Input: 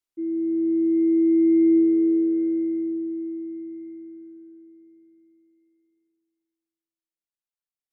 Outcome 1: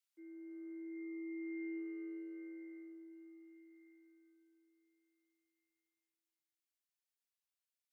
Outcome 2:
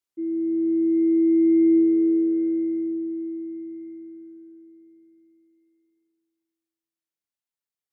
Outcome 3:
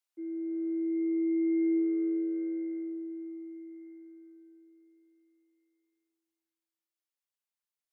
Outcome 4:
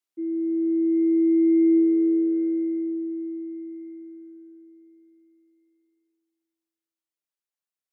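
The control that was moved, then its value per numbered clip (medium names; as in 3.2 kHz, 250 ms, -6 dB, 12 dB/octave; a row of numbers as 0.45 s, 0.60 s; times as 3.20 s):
high-pass, cutoff frequency: 1.5 kHz, 43 Hz, 580 Hz, 230 Hz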